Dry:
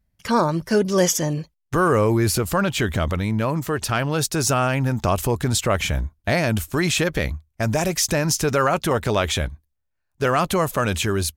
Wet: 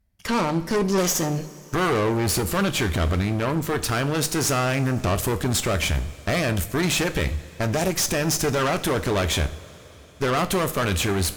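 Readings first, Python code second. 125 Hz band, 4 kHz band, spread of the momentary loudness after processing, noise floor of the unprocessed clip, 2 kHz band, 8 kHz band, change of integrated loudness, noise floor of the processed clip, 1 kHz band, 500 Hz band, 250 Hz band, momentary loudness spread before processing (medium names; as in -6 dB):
-2.0 dB, 0.0 dB, 5 LU, -75 dBFS, -1.5 dB, -1.0 dB, -2.0 dB, -46 dBFS, -3.0 dB, -3.0 dB, -1.5 dB, 6 LU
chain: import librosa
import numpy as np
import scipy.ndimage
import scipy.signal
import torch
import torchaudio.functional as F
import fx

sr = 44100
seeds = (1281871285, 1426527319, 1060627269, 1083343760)

y = fx.tube_stage(x, sr, drive_db=24.0, bias=0.75)
y = fx.rev_double_slope(y, sr, seeds[0], early_s=0.39, late_s=4.4, knee_db=-18, drr_db=9.5)
y = y * librosa.db_to_amplitude(5.0)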